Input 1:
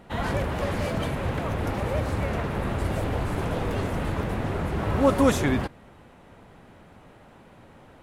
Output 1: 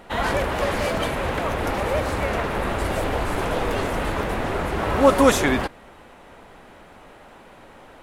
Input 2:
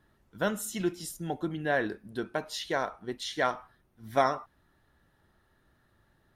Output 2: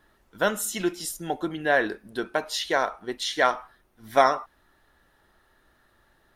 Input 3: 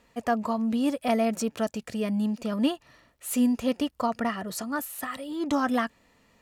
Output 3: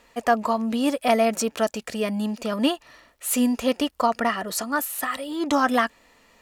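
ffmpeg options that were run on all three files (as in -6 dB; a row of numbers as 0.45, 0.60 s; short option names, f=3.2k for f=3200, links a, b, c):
-af "equalizer=f=120:w=0.6:g=-11.5,volume=7.5dB"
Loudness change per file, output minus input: +4.0, +6.0, +4.0 LU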